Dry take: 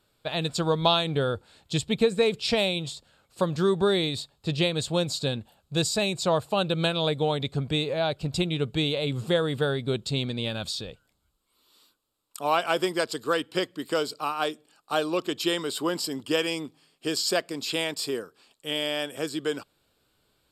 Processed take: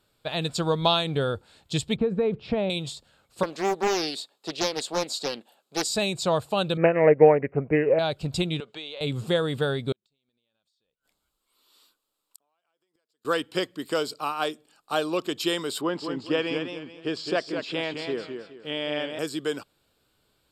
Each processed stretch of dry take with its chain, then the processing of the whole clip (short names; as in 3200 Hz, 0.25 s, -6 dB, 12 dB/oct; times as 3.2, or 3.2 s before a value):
1.96–2.7 LPF 1500 Hz + low shelf 430 Hz +5.5 dB + compressor 2.5:1, threshold -21 dBFS
3.43–5.9 HPF 280 Hz 24 dB/oct + Doppler distortion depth 0.55 ms
6.77–7.99 bell 480 Hz +13 dB 2 oct + careless resampling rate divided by 8×, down none, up filtered + upward expander, over -29 dBFS
8.6–9.01 BPF 520–5500 Hz + compressor 2.5:1, threshold -37 dBFS
9.92–13.25 bell 80 Hz -13.5 dB 2.5 oct + compressor 10:1, threshold -38 dBFS + flipped gate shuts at -35 dBFS, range -35 dB
15.81–19.19 LPF 2900 Hz + warbling echo 0.211 s, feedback 31%, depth 110 cents, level -6.5 dB
whole clip: dry